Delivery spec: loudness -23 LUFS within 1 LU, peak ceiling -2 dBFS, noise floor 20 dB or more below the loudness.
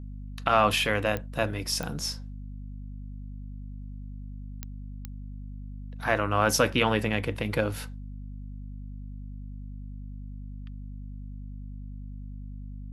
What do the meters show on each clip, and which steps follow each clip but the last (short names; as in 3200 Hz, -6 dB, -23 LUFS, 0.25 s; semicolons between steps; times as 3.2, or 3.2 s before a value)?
clicks 4; hum 50 Hz; harmonics up to 250 Hz; hum level -36 dBFS; loudness -26.5 LUFS; peak -7.0 dBFS; loudness target -23.0 LUFS
-> de-click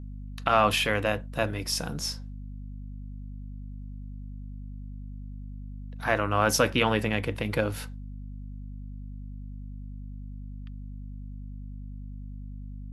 clicks 0; hum 50 Hz; harmonics up to 250 Hz; hum level -36 dBFS
-> de-hum 50 Hz, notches 5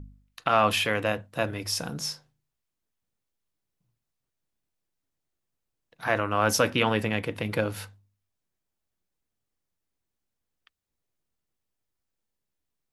hum none; loudness -26.5 LUFS; peak -7.0 dBFS; loudness target -23.0 LUFS
-> gain +3.5 dB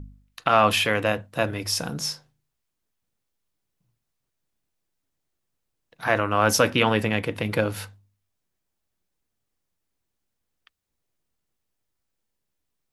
loudness -23.0 LUFS; peak -3.5 dBFS; noise floor -80 dBFS